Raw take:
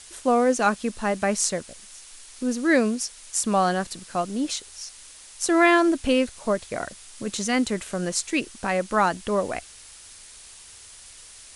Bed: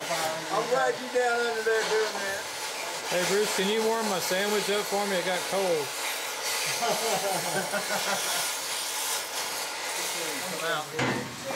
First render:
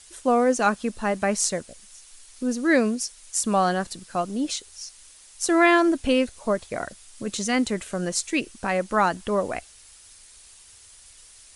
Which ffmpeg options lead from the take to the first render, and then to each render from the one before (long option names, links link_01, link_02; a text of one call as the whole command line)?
ffmpeg -i in.wav -af "afftdn=noise_reduction=6:noise_floor=-46" out.wav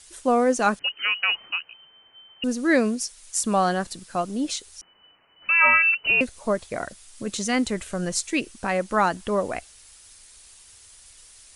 ffmpeg -i in.wav -filter_complex "[0:a]asettb=1/sr,asplit=3[link_01][link_02][link_03];[link_01]atrim=end=0.794[link_04];[link_02]atrim=start=0.79:end=2.44,asetpts=PTS-STARTPTS,afade=type=in:duration=0.004:curve=qsin,afade=type=out:start_time=1.646:duration=0.004:curve=qsin,lowpass=frequency=2600:width_type=q:width=0.5098,lowpass=frequency=2600:width_type=q:width=0.6013,lowpass=frequency=2600:width_type=q:width=0.9,lowpass=frequency=2600:width_type=q:width=2.563,afreqshift=-3100[link_05];[link_03]atrim=start=2.436[link_06];[link_04][link_05]acrossfade=duration=0.004:curve1=hsin:curve2=qsin[link_07];[link_07][link_06]acrossfade=duration=0.004:curve1=qsin:curve2=hsin,asettb=1/sr,asplit=3[link_08][link_09][link_10];[link_08]atrim=end=4.814[link_11];[link_09]atrim=start=4.81:end=6.21,asetpts=PTS-STARTPTS,afade=type=in:duration=0.004:curve=qsin,afade=type=out:start_time=1.396:duration=0.004:curve=qsin,lowpass=frequency=2600:width_type=q:width=0.5098,lowpass=frequency=2600:width_type=q:width=0.6013,lowpass=frequency=2600:width_type=q:width=0.9,lowpass=frequency=2600:width_type=q:width=2.563,afreqshift=-3000[link_12];[link_10]atrim=start=6.206[link_13];[link_11][link_12]acrossfade=duration=0.004:curve1=hsin:curve2=qsin[link_14];[link_14][link_13]acrossfade=duration=0.004:curve1=qsin:curve2=hsin,asettb=1/sr,asplit=3[link_15][link_16][link_17];[link_15]atrim=end=7.514[link_18];[link_16]atrim=start=7.51:end=8.18,asetpts=PTS-STARTPTS,afade=type=in:duration=0.004:curve=qsin,afade=type=out:start_time=0.666:duration=0.004:curve=qsin,asubboost=boost=10:cutoff=150[link_19];[link_17]atrim=start=8.176[link_20];[link_18][link_19]acrossfade=duration=0.004:curve1=hsin:curve2=qsin[link_21];[link_21][link_20]acrossfade=duration=0.004:curve1=qsin:curve2=hsin" out.wav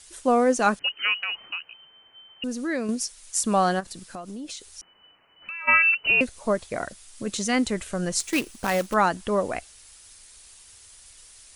ffmpeg -i in.wav -filter_complex "[0:a]asettb=1/sr,asplit=3[link_01][link_02][link_03];[link_01]atrim=end=1.194[link_04];[link_02]atrim=start=1.19:end=2.89,asetpts=PTS-STARTPTS,afade=type=in:duration=0.004:curve=qsin,afade=type=out:start_time=1.696:duration=0.004:curve=qsin,acompressor=threshold=-30dB:ratio=2:attack=3.2:release=140:knee=1:detection=peak[link_05];[link_03]atrim=start=2.886[link_06];[link_04][link_05]acrossfade=duration=0.004:curve1=hsin:curve2=qsin[link_07];[link_07][link_06]acrossfade=duration=0.004:curve1=qsin:curve2=hsin,asplit=3[link_08][link_09][link_10];[link_08]afade=type=out:start_time=3.79:duration=0.02[link_11];[link_09]acompressor=threshold=-33dB:ratio=8:attack=3.2:release=140:knee=1:detection=peak,afade=type=in:start_time=3.79:duration=0.02,afade=type=out:start_time=5.67:duration=0.02[link_12];[link_10]afade=type=in:start_time=5.67:duration=0.02[link_13];[link_11][link_12][link_13]amix=inputs=3:normalize=0,asettb=1/sr,asplit=3[link_14][link_15][link_16];[link_14]atrim=end=8.204[link_17];[link_15]atrim=start=8.2:end=8.94,asetpts=PTS-STARTPTS,afade=type=in:duration=0.004:curve=qsin,afade=type=out:start_time=0.736:duration=0.004:curve=qsin,acrusher=bits=2:mode=log:mix=0:aa=0.000001[link_18];[link_16]atrim=start=8.936[link_19];[link_17][link_18]acrossfade=duration=0.004:curve1=hsin:curve2=qsin[link_20];[link_20][link_19]acrossfade=duration=0.004:curve1=qsin:curve2=hsin" out.wav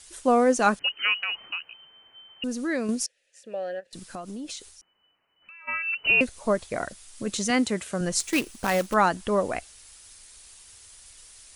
ffmpeg -i in.wav -filter_complex "[0:a]asettb=1/sr,asplit=3[link_01][link_02][link_03];[link_01]atrim=end=3.064[link_04];[link_02]atrim=start=3.06:end=3.93,asetpts=PTS-STARTPTS,afade=type=in:duration=0.004:curve=qsin,afade=type=out:start_time=0.866:duration=0.004:curve=qsin,asplit=3[link_05][link_06][link_07];[link_05]bandpass=frequency=530:width_type=q:width=8,volume=0dB[link_08];[link_06]bandpass=frequency=1840:width_type=q:width=8,volume=-6dB[link_09];[link_07]bandpass=frequency=2480:width_type=q:width=8,volume=-9dB[link_10];[link_08][link_09][link_10]amix=inputs=3:normalize=0[link_11];[link_03]atrim=start=3.926[link_12];[link_04][link_11]acrossfade=duration=0.004:curve1=hsin:curve2=qsin[link_13];[link_13][link_12]acrossfade=duration=0.004:curve1=qsin:curve2=hsin,asettb=1/sr,asplit=3[link_14][link_15][link_16];[link_14]atrim=end=7.504[link_17];[link_15]atrim=start=7.5:end=8.01,asetpts=PTS-STARTPTS,afade=type=in:duration=0.004:curve=qsin,afade=type=out:start_time=0.506:duration=0.004:curve=qsin,highpass=110[link_18];[link_16]atrim=start=8.006[link_19];[link_17][link_18]acrossfade=duration=0.004:curve1=hsin:curve2=qsin[link_20];[link_20][link_19]acrossfade=duration=0.004:curve1=qsin:curve2=hsin,asplit=3[link_21][link_22][link_23];[link_21]atrim=end=4.85,asetpts=PTS-STARTPTS,afade=type=out:start_time=4.68:duration=0.17:curve=qua:silence=0.251189[link_24];[link_22]atrim=start=4.85:end=5.83,asetpts=PTS-STARTPTS,volume=-12dB[link_25];[link_23]atrim=start=5.83,asetpts=PTS-STARTPTS,afade=type=in:duration=0.17:curve=qua:silence=0.251189[link_26];[link_24][link_25][link_26]concat=n=3:v=0:a=1" out.wav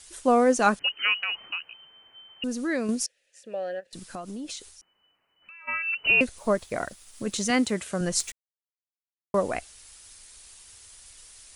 ffmpeg -i in.wav -filter_complex "[0:a]asettb=1/sr,asplit=3[link_01][link_02][link_03];[link_01]atrim=end=6.384[link_04];[link_02]atrim=start=6.38:end=7.78,asetpts=PTS-STARTPTS,afade=type=in:duration=0.004:curve=qsin,afade=type=out:start_time=1.396:duration=0.004:curve=qsin,aeval=exprs='sgn(val(0))*max(abs(val(0))-0.00141,0)':channel_layout=same[link_05];[link_03]atrim=start=7.776[link_06];[link_04][link_05]acrossfade=duration=0.004:curve1=hsin:curve2=qsin[link_07];[link_07][link_06]acrossfade=duration=0.004:curve1=qsin:curve2=hsin,asplit=3[link_08][link_09][link_10];[link_08]atrim=end=8.32,asetpts=PTS-STARTPTS,afade=type=out:start_time=8.316:duration=0.004:curve=hsin[link_11];[link_09]atrim=start=8.32:end=9.34,asetpts=PTS-STARTPTS,volume=0[link_12];[link_10]atrim=start=9.34,asetpts=PTS-STARTPTS,afade=type=in:duration=0.004:curve=hsin[link_13];[link_11][link_12][link_13]concat=n=3:v=0:a=1" out.wav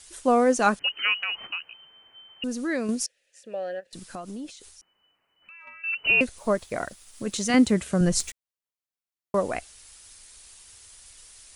ffmpeg -i in.wav -filter_complex "[0:a]asettb=1/sr,asplit=3[link_01][link_02][link_03];[link_01]atrim=end=0.844[link_04];[link_02]atrim=start=0.84:end=1.47,asetpts=PTS-STARTPTS,afade=type=in:duration=0.004:curve=qsin,afade=type=out:start_time=0.626:duration=0.004:curve=qsin,acompressor=mode=upward:threshold=-29dB:ratio=2.5:attack=3.2:release=140:knee=2.83:detection=peak[link_05];[link_03]atrim=start=1.466[link_06];[link_04][link_05]acrossfade=duration=0.004:curve1=hsin:curve2=qsin[link_07];[link_07][link_06]acrossfade=duration=0.004:curve1=qsin:curve2=hsin,asettb=1/sr,asplit=3[link_08][link_09][link_10];[link_08]atrim=end=4.484[link_11];[link_09]atrim=start=4.48:end=5.84,asetpts=PTS-STARTPTS,afade=type=in:duration=0.004:curve=qsin,afade=type=out:start_time=1.356:duration=0.004:curve=qsin,acompressor=threshold=-42dB:ratio=10:attack=3.2:release=140:knee=1:detection=peak[link_12];[link_10]atrim=start=5.836[link_13];[link_11][link_12]acrossfade=duration=0.004:curve1=hsin:curve2=qsin[link_14];[link_14][link_13]acrossfade=duration=0.004:curve1=qsin:curve2=hsin,asettb=1/sr,asplit=3[link_15][link_16][link_17];[link_15]atrim=end=7.544[link_18];[link_16]atrim=start=7.54:end=8.29,asetpts=PTS-STARTPTS,afade=type=in:duration=0.004:curve=qsin,afade=type=out:start_time=0.746:duration=0.004:curve=qsin,lowshelf=frequency=280:gain=11.5[link_19];[link_17]atrim=start=8.286[link_20];[link_18][link_19]acrossfade=duration=0.004:curve1=hsin:curve2=qsin[link_21];[link_21][link_20]acrossfade=duration=0.004:curve1=qsin:curve2=hsin" out.wav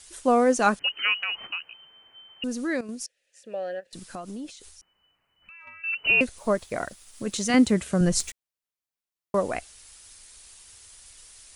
ffmpeg -i in.wav -filter_complex "[0:a]asettb=1/sr,asplit=3[link_01][link_02][link_03];[link_01]atrim=end=4.474[link_04];[link_02]atrim=start=4.47:end=5.96,asetpts=PTS-STARTPTS,afade=type=in:duration=0.004:curve=qsin,afade=type=out:start_time=1.486:duration=0.004:curve=qsin,asubboost=boost=9.5:cutoff=170[link_05];[link_03]atrim=start=5.956[link_06];[link_04][link_05]acrossfade=duration=0.004:curve1=hsin:curve2=qsin[link_07];[link_07][link_06]acrossfade=duration=0.004:curve1=qsin:curve2=hsin,asplit=2[link_08][link_09];[link_08]atrim=end=2.81,asetpts=PTS-STARTPTS,afade=type=out:start_time=2.806:duration=0.004:curve=hsin:silence=0.237137[link_10];[link_09]atrim=start=2.81,asetpts=PTS-STARTPTS,afade=type=in:duration=0.71:silence=0.237137[link_11];[link_10][link_11]concat=n=2:v=0:a=1" out.wav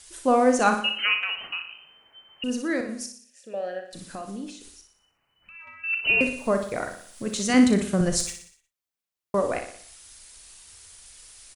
ffmpeg -i in.wav -filter_complex "[0:a]asplit=2[link_01][link_02];[link_02]adelay=36,volume=-11dB[link_03];[link_01][link_03]amix=inputs=2:normalize=0,aecho=1:1:60|120|180|240|300|360:0.398|0.199|0.0995|0.0498|0.0249|0.0124" out.wav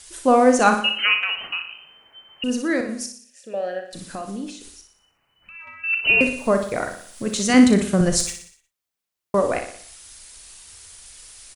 ffmpeg -i in.wav -af "volume=4.5dB" out.wav